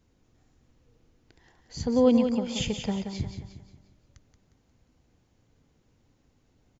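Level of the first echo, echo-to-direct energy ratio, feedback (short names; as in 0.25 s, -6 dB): -7.5 dB, -6.5 dB, 41%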